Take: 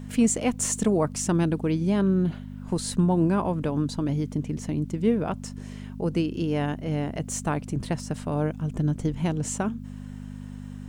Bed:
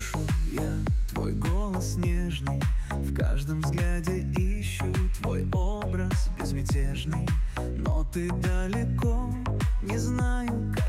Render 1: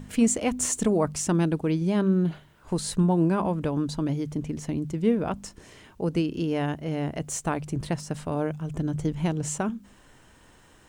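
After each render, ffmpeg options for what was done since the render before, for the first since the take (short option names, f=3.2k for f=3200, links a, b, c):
-af "bandreject=f=50:t=h:w=4,bandreject=f=100:t=h:w=4,bandreject=f=150:t=h:w=4,bandreject=f=200:t=h:w=4,bandreject=f=250:t=h:w=4"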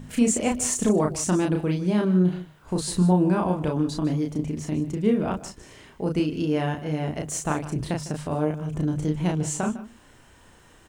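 -filter_complex "[0:a]asplit=2[a][b];[b]adelay=33,volume=-3dB[c];[a][c]amix=inputs=2:normalize=0,aecho=1:1:153:0.168"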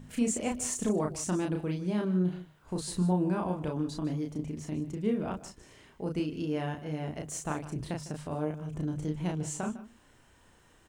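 -af "volume=-8dB"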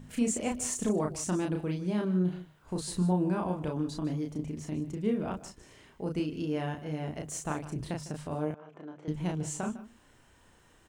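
-filter_complex "[0:a]asettb=1/sr,asplit=3[a][b][c];[a]atrim=end=8.544[d];[b]atrim=start=8.54:end=9.08,asetpts=PTS-STARTPTS,afade=t=in:d=0.004:c=qsin,afade=t=out:st=0.536:d=0.004:c=qsin,highpass=510,lowpass=2.2k[e];[c]atrim=start=9.076[f];[d][e]acrossfade=d=0.004:c1=hsin:c2=qsin[g];[g][f]acrossfade=d=0.004:c1=qsin:c2=hsin"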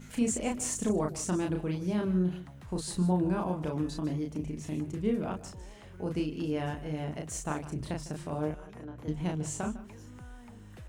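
-filter_complex "[1:a]volume=-21.5dB[a];[0:a][a]amix=inputs=2:normalize=0"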